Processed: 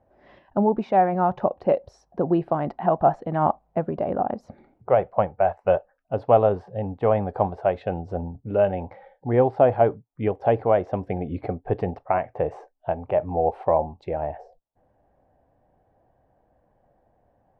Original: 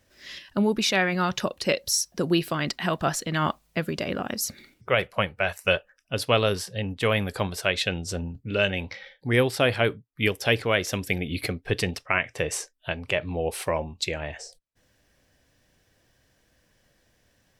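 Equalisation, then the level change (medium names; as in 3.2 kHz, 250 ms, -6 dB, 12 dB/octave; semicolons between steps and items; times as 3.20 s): resonant low-pass 780 Hz, resonance Q 4.4; 0.0 dB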